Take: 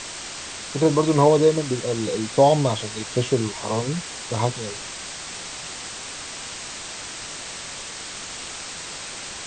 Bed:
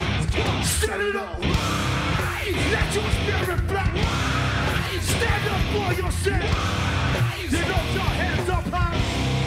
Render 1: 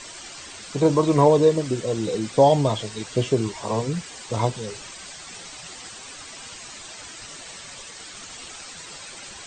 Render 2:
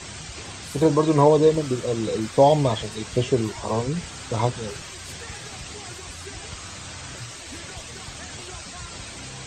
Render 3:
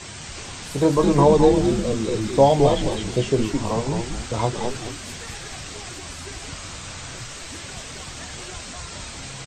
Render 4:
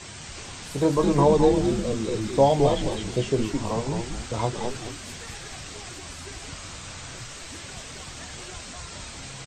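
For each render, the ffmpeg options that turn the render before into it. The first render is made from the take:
ffmpeg -i in.wav -af "afftdn=noise_reduction=10:noise_floor=-35" out.wav
ffmpeg -i in.wav -i bed.wav -filter_complex "[1:a]volume=-18dB[link_01];[0:a][link_01]amix=inputs=2:normalize=0" out.wav
ffmpeg -i in.wav -filter_complex "[0:a]asplit=2[link_01][link_02];[link_02]adelay=22,volume=-12dB[link_03];[link_01][link_03]amix=inputs=2:normalize=0,asplit=5[link_04][link_05][link_06][link_07][link_08];[link_05]adelay=213,afreqshift=-120,volume=-4dB[link_09];[link_06]adelay=426,afreqshift=-240,volume=-13.6dB[link_10];[link_07]adelay=639,afreqshift=-360,volume=-23.3dB[link_11];[link_08]adelay=852,afreqshift=-480,volume=-32.9dB[link_12];[link_04][link_09][link_10][link_11][link_12]amix=inputs=5:normalize=0" out.wav
ffmpeg -i in.wav -af "volume=-3.5dB" out.wav

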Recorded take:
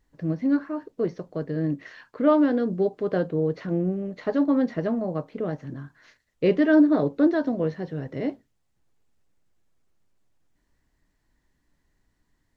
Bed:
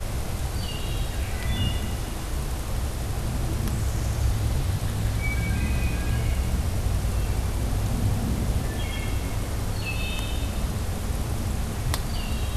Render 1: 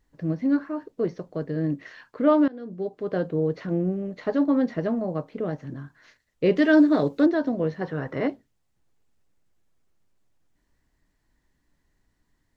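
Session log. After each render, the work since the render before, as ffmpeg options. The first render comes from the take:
ffmpeg -i in.wav -filter_complex "[0:a]asettb=1/sr,asplit=3[link_01][link_02][link_03];[link_01]atrim=end=6.564[link_04];[link_02]atrim=start=6.56:end=7.26,asetpts=PTS-STARTPTS,afade=type=in:duration=0.004:curve=qsin,afade=type=out:start_time=0.696:duration=0.004:curve=qsin,highshelf=frequency=2400:gain=11[link_05];[link_03]atrim=start=7.256[link_06];[link_04][link_05]acrossfade=duration=0.004:curve1=hsin:curve2=qsin[link_07];[link_07][link_06]acrossfade=duration=0.004:curve1=qsin:curve2=hsin,asettb=1/sr,asplit=3[link_08][link_09][link_10];[link_08]atrim=end=7.814[link_11];[link_09]atrim=start=7.81:end=8.28,asetpts=PTS-STARTPTS,afade=type=in:duration=0.004:curve=qsin,afade=type=out:start_time=0.466:duration=0.004:curve=qsin,equalizer=frequency=1200:width_type=o:width=1.5:gain=14.5[link_12];[link_10]atrim=start=8.276[link_13];[link_11][link_12]acrossfade=duration=0.004:curve1=hsin:curve2=qsin[link_14];[link_14][link_13]acrossfade=duration=0.004:curve1=qsin:curve2=hsin,asplit=2[link_15][link_16];[link_15]atrim=end=2.48,asetpts=PTS-STARTPTS,afade=type=out:start_time=2.476:duration=0.004:curve=hsin:silence=0.0841395[link_17];[link_16]atrim=start=2.48,asetpts=PTS-STARTPTS,afade=type=in:duration=0.86:silence=0.0841395[link_18];[link_17][link_18]concat=n=2:v=0:a=1" out.wav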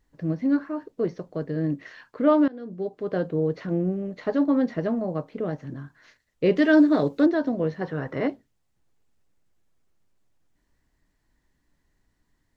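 ffmpeg -i in.wav -af anull out.wav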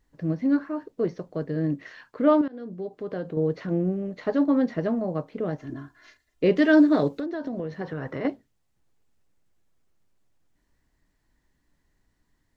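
ffmpeg -i in.wav -filter_complex "[0:a]asettb=1/sr,asplit=3[link_01][link_02][link_03];[link_01]atrim=end=2.414[link_04];[link_02]atrim=start=2.41:end=3.37,asetpts=PTS-STARTPTS,afade=type=in:duration=0.004:curve=qsin,afade=type=out:start_time=0.956:duration=0.004:curve=qsin,acompressor=threshold=-31dB:ratio=2:attack=3.2:release=140:knee=1:detection=peak[link_05];[link_03]atrim=start=3.366[link_06];[link_04][link_05]acrossfade=duration=0.004:curve1=hsin:curve2=qsin[link_07];[link_07][link_06]acrossfade=duration=0.004:curve1=qsin:curve2=hsin,asettb=1/sr,asplit=3[link_08][link_09][link_10];[link_08]atrim=end=5.584[link_11];[link_09]atrim=start=5.58:end=6.44,asetpts=PTS-STARTPTS,afade=type=in:duration=0.004:curve=qsin,afade=type=out:start_time=0.856:duration=0.004:curve=qsin,aecho=1:1:2.9:0.73,atrim=end_sample=37926[link_12];[link_10]atrim=start=6.436[link_13];[link_11][link_12]acrossfade=duration=0.004:curve1=hsin:curve2=qsin[link_14];[link_14][link_13]acrossfade=duration=0.004:curve1=qsin:curve2=hsin,asettb=1/sr,asplit=3[link_15][link_16][link_17];[link_15]atrim=end=7.144[link_18];[link_16]atrim=start=7.14:end=8.25,asetpts=PTS-STARTPTS,afade=type=in:duration=0.004:curve=qsin,afade=type=out:start_time=1.106:duration=0.004:curve=qsin,acompressor=threshold=-26dB:ratio=16:attack=3.2:release=140:knee=1:detection=peak[link_19];[link_17]atrim=start=8.246[link_20];[link_18][link_19]acrossfade=duration=0.004:curve1=hsin:curve2=qsin[link_21];[link_21][link_20]acrossfade=duration=0.004:curve1=qsin:curve2=hsin" out.wav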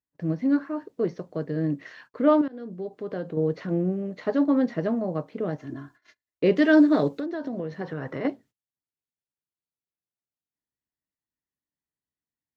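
ffmpeg -i in.wav -af "highpass=91,agate=range=-24dB:threshold=-51dB:ratio=16:detection=peak" out.wav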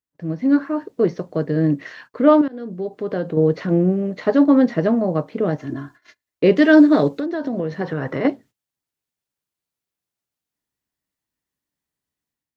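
ffmpeg -i in.wav -af "dynaudnorm=framelen=300:gausssize=3:maxgain=8.5dB" out.wav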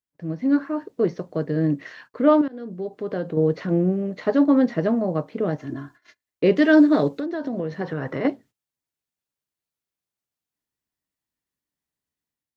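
ffmpeg -i in.wav -af "volume=-3.5dB" out.wav

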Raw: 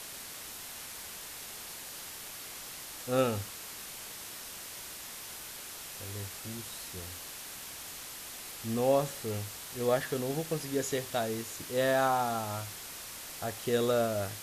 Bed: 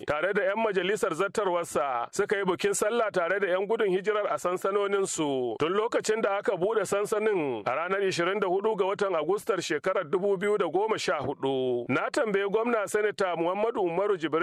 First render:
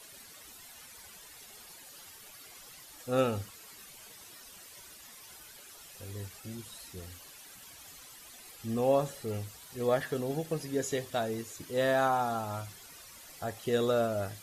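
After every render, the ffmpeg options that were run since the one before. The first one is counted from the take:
ffmpeg -i in.wav -af "afftdn=noise_reduction=12:noise_floor=-45" out.wav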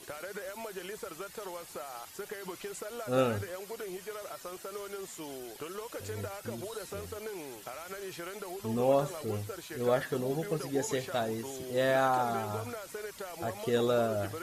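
ffmpeg -i in.wav -i bed.wav -filter_complex "[1:a]volume=-15dB[link_01];[0:a][link_01]amix=inputs=2:normalize=0" out.wav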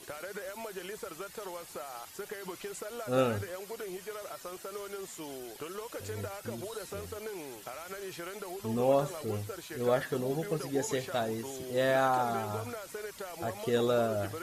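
ffmpeg -i in.wav -af anull out.wav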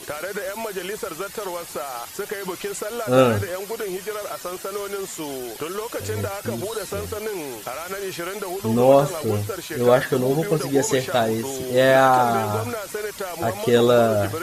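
ffmpeg -i in.wav -af "volume=12dB" out.wav

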